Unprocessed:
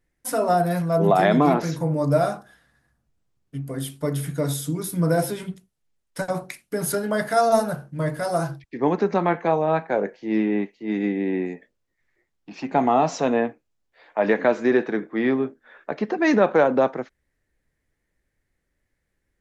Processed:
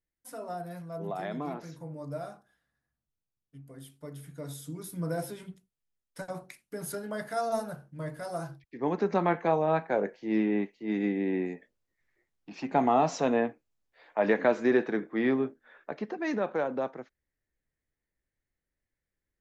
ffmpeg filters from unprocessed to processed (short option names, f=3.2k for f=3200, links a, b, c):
-af "volume=-5dB,afade=t=in:st=4.27:d=0.6:silence=0.501187,afade=t=in:st=8.68:d=0.49:silence=0.446684,afade=t=out:st=15.45:d=0.79:silence=0.421697"